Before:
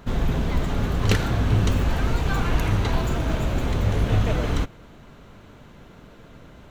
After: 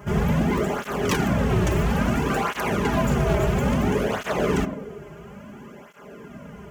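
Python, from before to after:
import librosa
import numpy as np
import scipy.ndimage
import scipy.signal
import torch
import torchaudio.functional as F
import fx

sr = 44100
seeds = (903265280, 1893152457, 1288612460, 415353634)

p1 = scipy.signal.sosfilt(scipy.signal.butter(4, 46.0, 'highpass', fs=sr, output='sos'), x)
p2 = fx.peak_eq(p1, sr, hz=4100.0, db=-13.0, octaves=0.4)
p3 = fx.notch(p2, sr, hz=3700.0, q=6.4)
p4 = p3 + 0.56 * np.pad(p3, (int(4.9 * sr / 1000.0), 0))[:len(p3)]
p5 = fx.rider(p4, sr, range_db=10, speed_s=0.5)
p6 = p4 + (p5 * librosa.db_to_amplitude(3.0))
p7 = 10.0 ** (-11.0 / 20.0) * (np.abs((p6 / 10.0 ** (-11.0 / 20.0) + 3.0) % 4.0 - 2.0) - 1.0)
p8 = p7 + fx.echo_banded(p7, sr, ms=94, feedback_pct=70, hz=390.0, wet_db=-5, dry=0)
p9 = fx.flanger_cancel(p8, sr, hz=0.59, depth_ms=4.3)
y = p9 * librosa.db_to_amplitude(-1.5)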